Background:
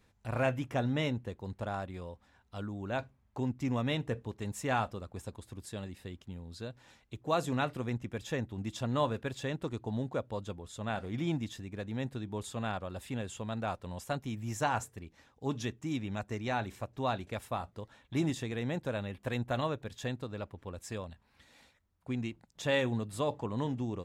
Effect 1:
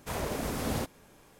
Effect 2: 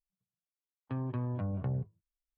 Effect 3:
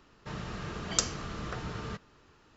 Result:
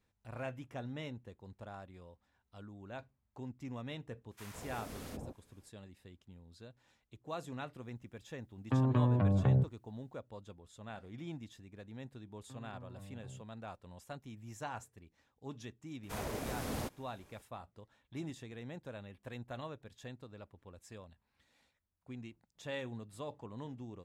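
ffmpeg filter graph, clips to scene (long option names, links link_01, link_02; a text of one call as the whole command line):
ffmpeg -i bed.wav -i cue0.wav -i cue1.wav -filter_complex "[1:a]asplit=2[link_01][link_02];[2:a]asplit=2[link_03][link_04];[0:a]volume=-11.5dB[link_05];[link_01]acrossover=split=920[link_06][link_07];[link_06]adelay=160[link_08];[link_08][link_07]amix=inputs=2:normalize=0[link_09];[link_03]acontrast=78[link_10];[link_02]volume=24.5dB,asoftclip=hard,volume=-24.5dB[link_11];[link_09]atrim=end=1.39,asetpts=PTS-STARTPTS,volume=-13dB,afade=type=in:duration=0.004:curve=hsin,afade=type=out:start_time=1.386:duration=0.004:curve=hsin,adelay=4310[link_12];[link_10]atrim=end=2.37,asetpts=PTS-STARTPTS,volume=-1dB,afade=type=in:duration=0.004:curve=hsin,afade=type=out:start_time=2.366:duration=0.004:curve=hsin,adelay=7810[link_13];[link_04]atrim=end=2.37,asetpts=PTS-STARTPTS,volume=-17dB,afade=type=in:duration=0.004:curve=hsin,afade=type=out:start_time=2.366:duration=0.004:curve=hsin,adelay=11590[link_14];[link_11]atrim=end=1.39,asetpts=PTS-STARTPTS,volume=-6.5dB,afade=type=in:duration=0.004:curve=hsin,afade=type=out:start_time=1.386:duration=0.004:curve=hsin,adelay=16030[link_15];[link_05][link_12][link_13][link_14][link_15]amix=inputs=5:normalize=0" out.wav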